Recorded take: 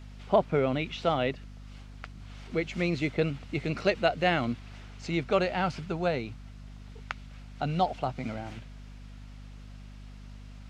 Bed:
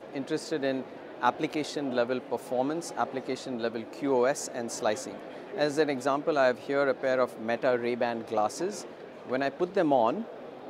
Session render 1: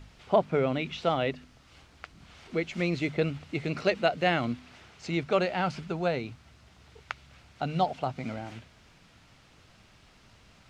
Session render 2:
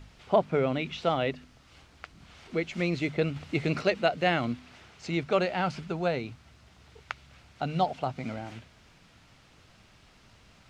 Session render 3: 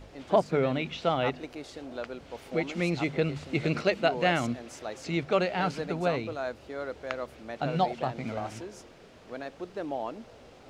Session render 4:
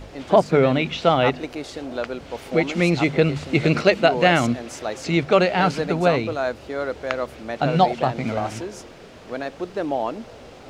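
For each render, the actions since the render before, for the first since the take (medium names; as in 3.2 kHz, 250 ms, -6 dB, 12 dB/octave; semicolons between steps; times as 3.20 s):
de-hum 50 Hz, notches 5
3.36–3.82 s: gain +3.5 dB
add bed -10 dB
trim +9.5 dB; peak limiter -3 dBFS, peak gain reduction 2.5 dB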